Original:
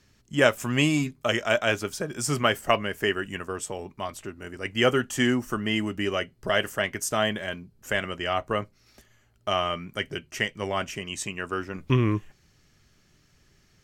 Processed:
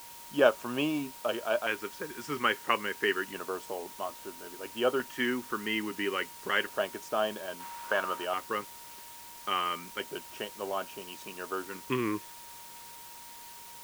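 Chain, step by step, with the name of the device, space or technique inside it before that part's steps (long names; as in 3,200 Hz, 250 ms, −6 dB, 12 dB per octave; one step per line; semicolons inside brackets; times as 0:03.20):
shortwave radio (band-pass filter 340–2,600 Hz; amplitude tremolo 0.32 Hz, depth 36%; auto-filter notch square 0.3 Hz 650–2,000 Hz; steady tone 940 Hz −51 dBFS; white noise bed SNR 15 dB)
0:07.60–0:08.25: parametric band 1,200 Hz +11.5 dB 1.5 octaves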